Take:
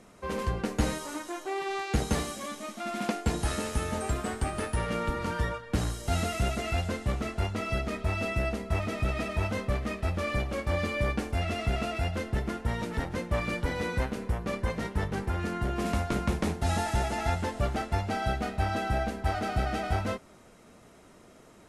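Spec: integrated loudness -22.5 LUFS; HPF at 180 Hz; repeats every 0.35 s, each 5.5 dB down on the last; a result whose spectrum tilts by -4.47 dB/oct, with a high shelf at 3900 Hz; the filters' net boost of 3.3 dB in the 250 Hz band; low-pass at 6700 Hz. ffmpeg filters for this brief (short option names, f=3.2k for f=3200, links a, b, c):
-af "highpass=180,lowpass=6.7k,equalizer=f=250:t=o:g=6,highshelf=f=3.9k:g=8,aecho=1:1:350|700|1050|1400|1750|2100|2450:0.531|0.281|0.149|0.079|0.0419|0.0222|0.0118,volume=7dB"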